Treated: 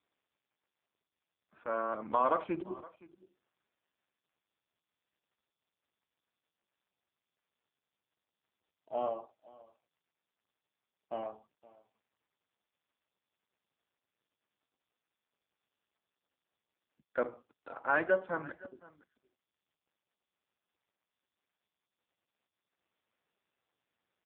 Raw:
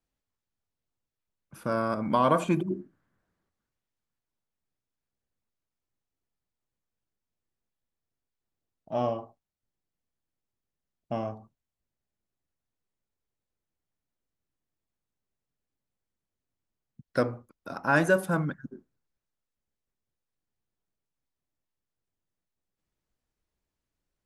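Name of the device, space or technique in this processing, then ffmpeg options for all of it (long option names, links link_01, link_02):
satellite phone: -af "highpass=400,lowpass=3200,aecho=1:1:517:0.0891,volume=-3.5dB" -ar 8000 -c:a libopencore_amrnb -b:a 5150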